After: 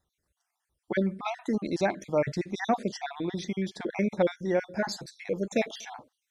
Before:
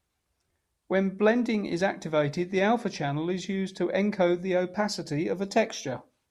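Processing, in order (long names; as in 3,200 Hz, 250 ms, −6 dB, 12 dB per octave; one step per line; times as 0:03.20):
time-frequency cells dropped at random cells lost 44%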